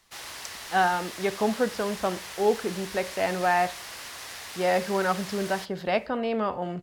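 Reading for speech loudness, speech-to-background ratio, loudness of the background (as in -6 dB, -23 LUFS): -27.5 LUFS, 10.5 dB, -38.0 LUFS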